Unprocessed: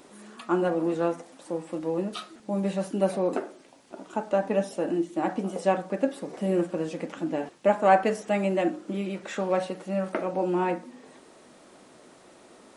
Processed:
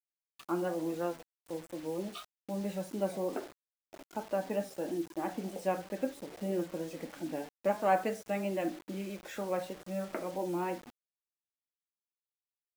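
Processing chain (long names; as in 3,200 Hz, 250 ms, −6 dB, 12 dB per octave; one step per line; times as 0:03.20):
pitch vibrato 3.1 Hz 45 cents
noise reduction from a noise print of the clip's start 21 dB
bit reduction 7 bits
level −8.5 dB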